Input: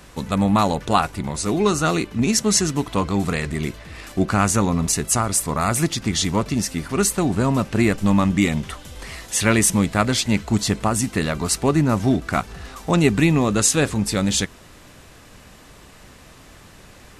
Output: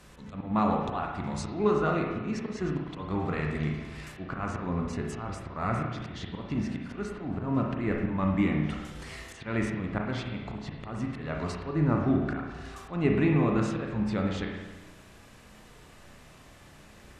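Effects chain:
treble cut that deepens with the level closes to 2,100 Hz, closed at −17.5 dBFS
volume swells 177 ms
spring reverb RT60 1.2 s, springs 33/52 ms, chirp 60 ms, DRR 0.5 dB
level −9 dB

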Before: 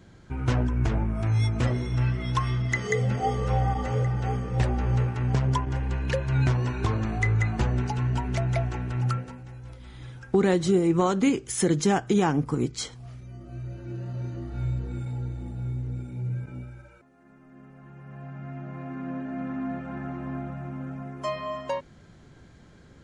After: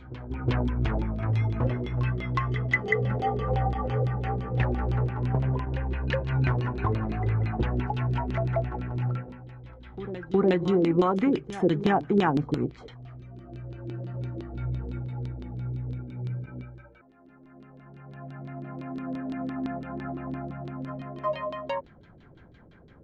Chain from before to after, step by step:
auto-filter low-pass saw down 5.9 Hz 300–3,900 Hz
backwards echo 363 ms −14.5 dB
level −2.5 dB

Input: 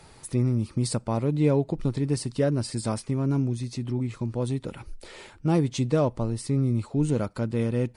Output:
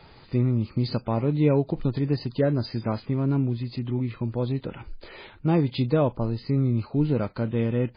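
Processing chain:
level +1.5 dB
MP3 16 kbit/s 11,025 Hz

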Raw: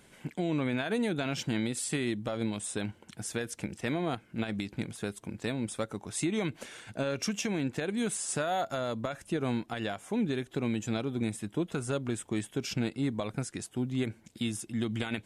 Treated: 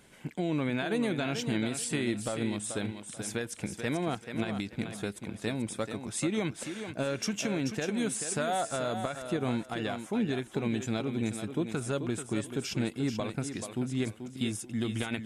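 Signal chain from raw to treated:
feedback echo with a high-pass in the loop 435 ms, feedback 27%, high-pass 170 Hz, level −7.5 dB

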